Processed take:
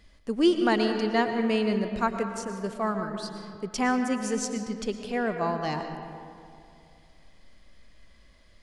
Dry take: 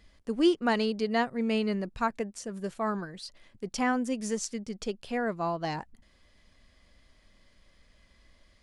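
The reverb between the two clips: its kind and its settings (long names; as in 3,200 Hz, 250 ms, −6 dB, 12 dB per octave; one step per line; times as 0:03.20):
comb and all-pass reverb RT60 2.5 s, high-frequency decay 0.45×, pre-delay 75 ms, DRR 6 dB
level +2 dB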